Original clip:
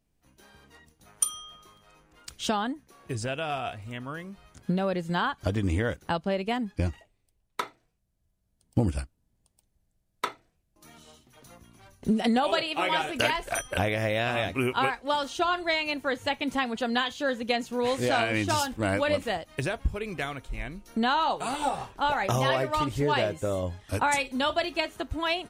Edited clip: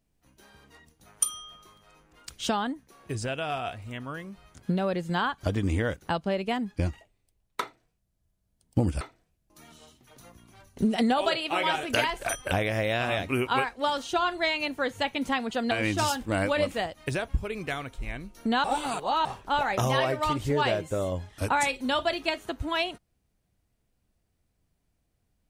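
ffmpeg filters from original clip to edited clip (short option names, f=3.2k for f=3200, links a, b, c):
-filter_complex "[0:a]asplit=5[a][b][c][d][e];[a]atrim=end=9.012[f];[b]atrim=start=10.268:end=16.972[g];[c]atrim=start=18.218:end=21.152[h];[d]atrim=start=21.148:end=21.762,asetpts=PTS-STARTPTS,areverse[i];[e]atrim=start=21.758[j];[f][g]acrossfade=d=0.004:c1=hsin:c2=hsin[k];[k][h]acrossfade=d=0.004:c1=hsin:c2=hsin[l];[l][i]acrossfade=d=0.004:c1=hsin:c2=hsin[m];[m][j]acrossfade=d=0.004:c1=hsin:c2=hsin"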